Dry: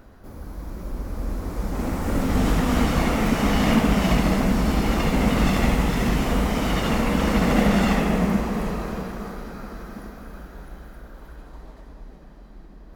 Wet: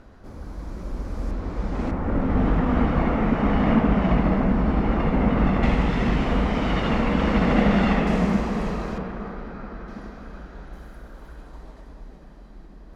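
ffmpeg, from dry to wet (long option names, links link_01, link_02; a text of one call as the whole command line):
ffmpeg -i in.wav -af "asetnsamples=nb_out_samples=441:pad=0,asendcmd='1.31 lowpass f 3900;1.91 lowpass f 1700;5.63 lowpass f 3300;8.07 lowpass f 6200;8.98 lowpass f 2700;9.88 lowpass f 5100;10.73 lowpass f 11000',lowpass=7300" out.wav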